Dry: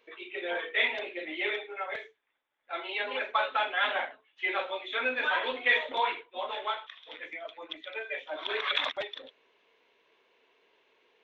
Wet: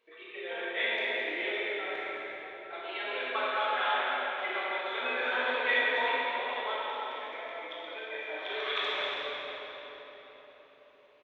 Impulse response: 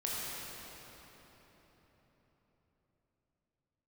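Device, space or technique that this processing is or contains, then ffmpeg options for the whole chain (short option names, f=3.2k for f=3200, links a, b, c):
cave: -filter_complex "[0:a]aecho=1:1:217:0.355[a];[1:a]atrim=start_sample=2205[b];[a][b]afir=irnorm=-1:irlink=0,volume=-5.5dB"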